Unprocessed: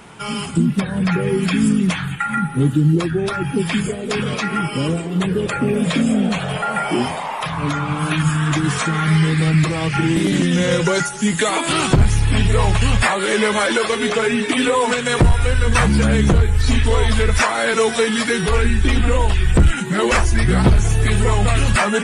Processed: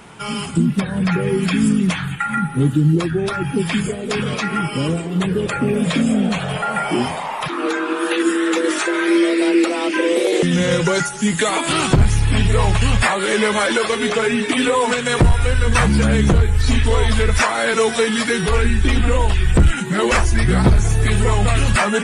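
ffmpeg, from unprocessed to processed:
-filter_complex "[0:a]asettb=1/sr,asplit=3[s0][s1][s2];[s0]atrim=end=7.484[s3];[s1]atrim=start=7.48:end=10.43,asetpts=PTS-STARTPTS,afade=t=in:d=0.004:c=qsin,afade=t=out:st=2.946:d=0.004:c=qsin,afreqshift=180[s4];[s2]atrim=start=10.426[s5];[s3][s4]acrossfade=d=0.004:c1=hsin:c2=qsin[s6];[s6][s5]acrossfade=d=0.004:c1=qsin:c2=hsin,asettb=1/sr,asplit=3[s7][s8][s9];[s7]atrim=end=20.584[s10];[s8]atrim=start=20.58:end=21.03,asetpts=PTS-STARTPTS,afade=t=in:d=0.004:c=qsin,afade=t=out:st=0.446:d=0.004:c=qsin,equalizer=f=2900:w=5.2:g=-6[s11];[s9]atrim=start=21.026[s12];[s10][s11]acrossfade=d=0.004:c1=hsin:c2=qsin[s13];[s13][s12]acrossfade=d=0.004:c1=qsin:c2=hsin"

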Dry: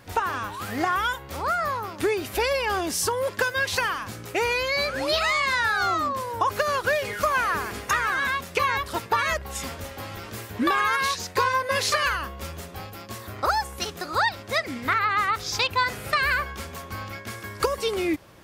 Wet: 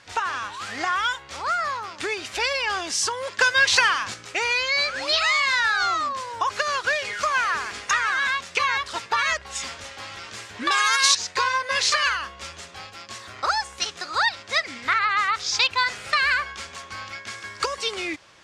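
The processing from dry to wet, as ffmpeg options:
-filter_complex "[0:a]asettb=1/sr,asplit=3[s0][s1][s2];[s0]atrim=end=10.714[s3];[s1]atrim=start=10.71:end=11.15,asetpts=PTS-STARTPTS,afade=t=in:d=0.004:c=qsin,afade=t=out:st=0.436:d=0.004:c=qsin,bass=f=250:g=-5,treble=f=4000:g=14[s4];[s2]atrim=start=11.146[s5];[s3][s4]acrossfade=d=0.004:c1=hsin:c2=qsin[s6];[s6][s5]acrossfade=d=0.004:c1=qsin:c2=hsin,asplit=3[s7][s8][s9];[s7]atrim=end=3.412[s10];[s8]atrim=start=3.408:end=4.142,asetpts=PTS-STARTPTS,volume=1.78[s11];[s9]atrim=start=4.138[s12];[s10][s11]acrossfade=d=0.004:c1=hsin:c2=hsin[s13];[s13][s12]acrossfade=d=0.004:c1=hsin:c2=hsin,lowpass=f=7600:w=0.5412,lowpass=f=7600:w=1.3066,tiltshelf=f=760:g=-8.5,volume=0.708"

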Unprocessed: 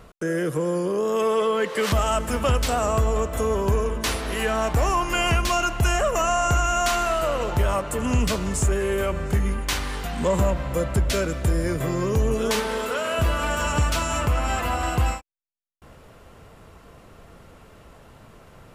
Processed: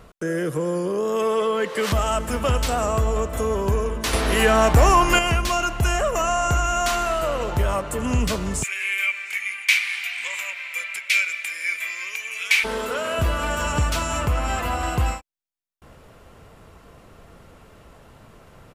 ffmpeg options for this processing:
-filter_complex "[0:a]asplit=2[s0][s1];[s1]afade=t=in:st=1.93:d=0.01,afade=t=out:st=2.33:d=0.01,aecho=0:1:510|1020|1530|2040:0.237137|0.0829981|0.0290493|0.0101673[s2];[s0][s2]amix=inputs=2:normalize=0,asettb=1/sr,asplit=3[s3][s4][s5];[s3]atrim=end=4.134[s6];[s4]atrim=start=4.13:end=5.19,asetpts=PTS-STARTPTS,afade=t=in:d=0.004:c=qsin,afade=t=out:st=1.056:d=0.004:c=qsin,acontrast=89[s7];[s5]atrim=start=5.186[s8];[s6][s7]acrossfade=d=0.004:c1=hsin:c2=qsin[s9];[s9][s8]acrossfade=d=0.004:c1=qsin:c2=hsin,asplit=3[s10][s11][s12];[s10]afade=t=out:st=8.62:d=0.02[s13];[s11]highpass=f=2300:t=q:w=11,afade=t=in:st=8.62:d=0.02,afade=t=out:st=12.63:d=0.02[s14];[s12]afade=t=in:st=12.63:d=0.02[s15];[s13][s14][s15]amix=inputs=3:normalize=0"

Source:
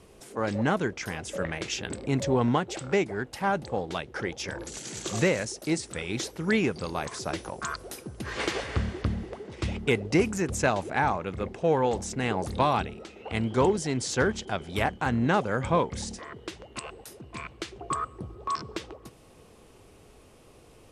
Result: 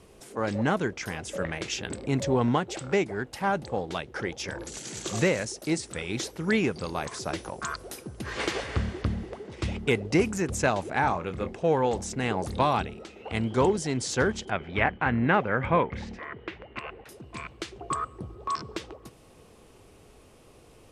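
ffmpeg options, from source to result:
-filter_complex "[0:a]asettb=1/sr,asplit=3[s0][s1][s2];[s0]atrim=end=11.004[s3];[s1]atrim=start=11:end=11.55,asetpts=PTS-STARTPTS,afade=t=in:d=0.004:c=qsin,afade=t=out:st=0.546:d=0.004:c=qsin,asplit=2[s4][s5];[s5]adelay=23,volume=0.355[s6];[s4][s6]amix=inputs=2:normalize=0,atrim=end_sample=24255[s7];[s2]atrim=start=11.546[s8];[s3][s7]acrossfade=d=0.004:c1=hsin:c2=qsin[s9];[s9][s8]acrossfade=d=0.004:c1=qsin:c2=hsin,asettb=1/sr,asplit=3[s10][s11][s12];[s10]atrim=end=14.504[s13];[s11]atrim=start=14.5:end=17.09,asetpts=PTS-STARTPTS,afade=t=in:d=0.004:c=qsin,afade=t=out:st=2.586:d=0.004:c=qsin,lowpass=f=2200:t=q:w=2[s14];[s12]atrim=start=17.086[s15];[s13][s14]acrossfade=d=0.004:c1=hsin:c2=qsin[s16];[s16][s15]acrossfade=d=0.004:c1=qsin:c2=hsin"

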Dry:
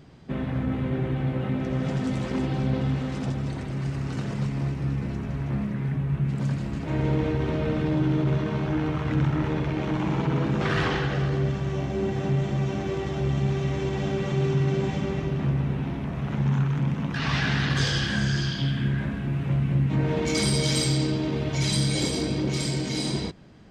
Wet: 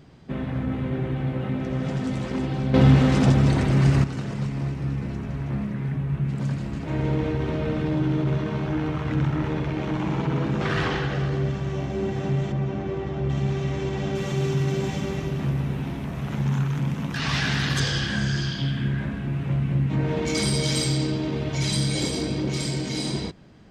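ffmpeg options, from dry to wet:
-filter_complex "[0:a]asettb=1/sr,asplit=3[s0][s1][s2];[s0]atrim=end=12.524[s3];[s1]atrim=start=12.52:end=13.3,asetpts=PTS-STARTPTS,afade=t=in:d=0.004:c=qsin,afade=t=out:st=0.776:d=0.004:c=qsin,lowpass=f=1800:p=1[s4];[s2]atrim=start=13.296[s5];[s3][s4]acrossfade=d=0.004:c1=hsin:c2=qsin[s6];[s6][s5]acrossfade=d=0.004:c1=qsin:c2=hsin,asettb=1/sr,asplit=3[s7][s8][s9];[s7]atrim=end=14.154[s10];[s8]atrim=start=14.15:end=17.8,asetpts=PTS-STARTPTS,afade=t=in:d=0.004:c=qsin,afade=t=out:st=3.646:d=0.004:c=qsin,aemphasis=mode=production:type=50fm[s11];[s9]atrim=start=17.796[s12];[s10][s11]acrossfade=d=0.004:c1=hsin:c2=qsin[s13];[s13][s12]acrossfade=d=0.004:c1=qsin:c2=hsin,asplit=3[s14][s15][s16];[s14]atrim=end=2.742[s17];[s15]atrim=start=2.738:end=4.042,asetpts=PTS-STARTPTS,volume=3.55[s18];[s16]atrim=start=4.038[s19];[s17][s18]acrossfade=d=0.004:c1=hsin:c2=hsin[s20];[s20][s19]acrossfade=d=0.004:c1=hsin:c2=hsin"

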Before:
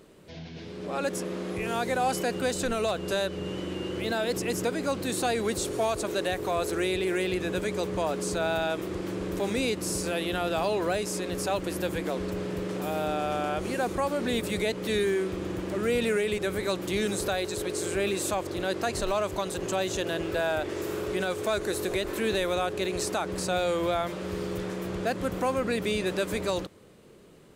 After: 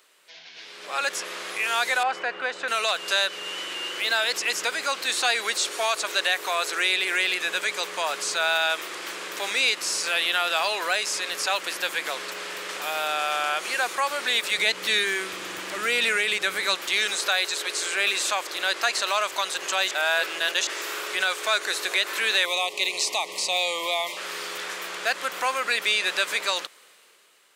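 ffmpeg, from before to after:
-filter_complex "[0:a]asettb=1/sr,asplit=3[s0][s1][s2];[s0]atrim=end=2.034[s3];[s1]atrim=start=2.03:end=2.68,asetpts=PTS-STARTPTS,afade=t=in:d=0.004:c=qsin,afade=t=out:st=0.646:d=0.004:c=qsin,lowpass=1800[s4];[s2]atrim=start=2.676[s5];[s3][s4]acrossfade=d=0.004:c1=hsin:c2=qsin[s6];[s6][s5]acrossfade=d=0.004:c1=qsin:c2=hsin,asettb=1/sr,asplit=3[s7][s8][s9];[s7]atrim=end=14.584[s10];[s8]atrim=start=14.58:end=16.75,asetpts=PTS-STARTPTS,afade=t=in:d=0.004:c=qsin,afade=t=out:st=2.166:d=0.004:c=qsin,bass=f=250:g=12,treble=f=4000:g=1[s11];[s9]atrim=start=16.746[s12];[s10][s11]acrossfade=d=0.004:c1=hsin:c2=qsin[s13];[s13][s12]acrossfade=d=0.004:c1=qsin:c2=hsin,asettb=1/sr,asplit=3[s14][s15][s16];[s14]atrim=end=22.454[s17];[s15]atrim=start=22.45:end=24.17,asetpts=PTS-STARTPTS,afade=t=in:d=0.004:c=qsin,afade=t=out:st=1.716:d=0.004:c=qsin,asuperstop=centerf=1500:order=8:qfactor=1.8[s18];[s16]atrim=start=24.166[s19];[s17][s18]acrossfade=d=0.004:c1=hsin:c2=qsin[s20];[s20][s19]acrossfade=d=0.004:c1=qsin:c2=hsin,asplit=3[s21][s22][s23];[s21]atrim=end=19.912[s24];[s22]atrim=start=19.908:end=20.672,asetpts=PTS-STARTPTS,areverse[s25];[s23]atrim=start=20.668[s26];[s24][s25]acrossfade=d=0.004:c1=hsin:c2=hsin[s27];[s27][s26]acrossfade=d=0.004:c1=hsin:c2=hsin,acrossover=split=6500[s28][s29];[s29]acompressor=threshold=0.00282:ratio=4:attack=1:release=60[s30];[s28][s30]amix=inputs=2:normalize=0,highpass=1400,dynaudnorm=f=110:g=13:m=2.51,volume=1.68"

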